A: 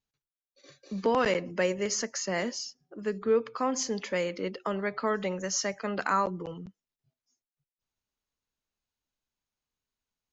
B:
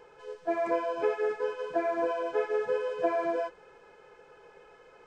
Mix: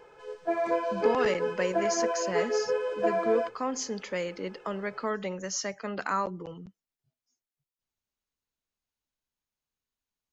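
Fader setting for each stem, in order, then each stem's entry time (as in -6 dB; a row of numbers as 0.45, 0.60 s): -2.5, +1.0 dB; 0.00, 0.00 s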